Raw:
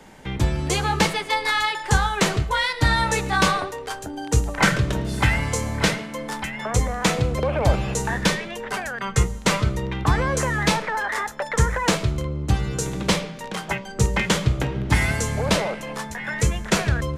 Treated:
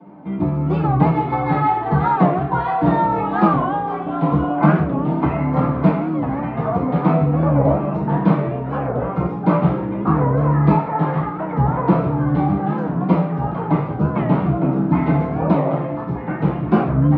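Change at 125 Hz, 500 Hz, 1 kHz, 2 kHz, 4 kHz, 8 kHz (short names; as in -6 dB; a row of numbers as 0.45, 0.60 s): +5.5 dB, +5.0 dB, +5.5 dB, -8.5 dB, under -15 dB, under -40 dB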